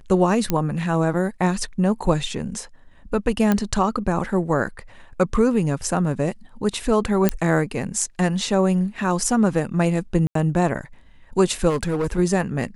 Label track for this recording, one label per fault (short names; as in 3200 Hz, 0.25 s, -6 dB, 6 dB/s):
0.500000	0.500000	pop -6 dBFS
3.520000	3.520000	pop -7 dBFS
7.290000	7.290000	pop -3 dBFS
10.270000	10.350000	gap 83 ms
11.690000	12.190000	clipped -18.5 dBFS